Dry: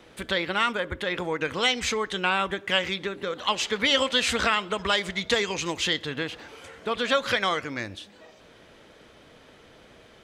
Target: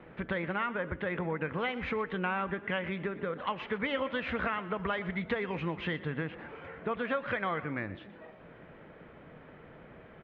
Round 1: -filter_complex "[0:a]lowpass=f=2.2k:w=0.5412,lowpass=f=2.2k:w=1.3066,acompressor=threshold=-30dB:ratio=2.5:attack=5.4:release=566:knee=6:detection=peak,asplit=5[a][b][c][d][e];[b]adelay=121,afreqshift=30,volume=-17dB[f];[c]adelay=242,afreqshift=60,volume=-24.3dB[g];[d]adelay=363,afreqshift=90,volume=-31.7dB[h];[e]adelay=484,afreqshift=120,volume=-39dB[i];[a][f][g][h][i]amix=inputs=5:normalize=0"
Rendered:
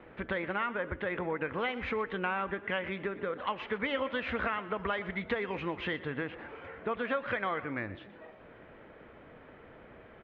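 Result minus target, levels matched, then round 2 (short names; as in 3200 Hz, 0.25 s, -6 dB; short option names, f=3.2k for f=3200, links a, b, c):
125 Hz band -4.5 dB
-filter_complex "[0:a]lowpass=f=2.2k:w=0.5412,lowpass=f=2.2k:w=1.3066,equalizer=f=160:t=o:w=0.51:g=8.5,acompressor=threshold=-30dB:ratio=2.5:attack=5.4:release=566:knee=6:detection=peak,asplit=5[a][b][c][d][e];[b]adelay=121,afreqshift=30,volume=-17dB[f];[c]adelay=242,afreqshift=60,volume=-24.3dB[g];[d]adelay=363,afreqshift=90,volume=-31.7dB[h];[e]adelay=484,afreqshift=120,volume=-39dB[i];[a][f][g][h][i]amix=inputs=5:normalize=0"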